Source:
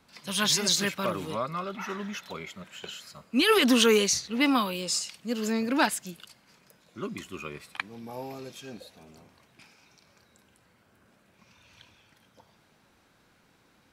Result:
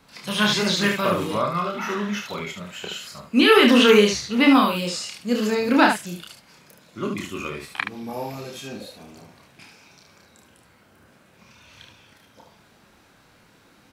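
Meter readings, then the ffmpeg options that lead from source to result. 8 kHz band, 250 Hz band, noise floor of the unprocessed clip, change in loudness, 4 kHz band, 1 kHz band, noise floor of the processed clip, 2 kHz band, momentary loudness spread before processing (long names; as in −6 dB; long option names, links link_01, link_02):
−3.0 dB, +8.0 dB, −64 dBFS, +6.0 dB, +4.5 dB, +8.0 dB, −56 dBFS, +8.0 dB, 20 LU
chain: -filter_complex "[0:a]acrossover=split=3700[link_01][link_02];[link_02]acompressor=threshold=-42dB:ratio=4:attack=1:release=60[link_03];[link_01][link_03]amix=inputs=2:normalize=0,aecho=1:1:29|73:0.668|0.531,volume=6dB"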